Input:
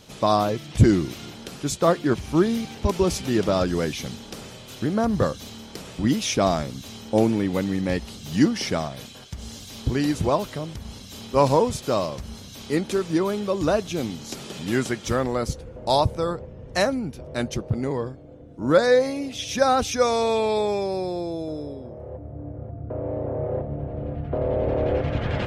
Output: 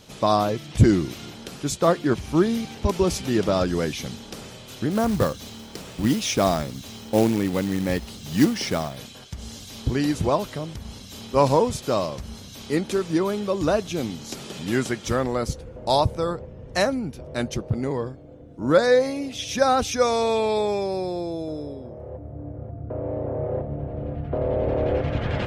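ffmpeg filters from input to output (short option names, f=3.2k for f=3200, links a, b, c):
-filter_complex "[0:a]asplit=3[a][b][c];[a]afade=t=out:st=4.9:d=0.02[d];[b]acrusher=bits=4:mode=log:mix=0:aa=0.000001,afade=t=in:st=4.9:d=0.02,afade=t=out:st=8.97:d=0.02[e];[c]afade=t=in:st=8.97:d=0.02[f];[d][e][f]amix=inputs=3:normalize=0"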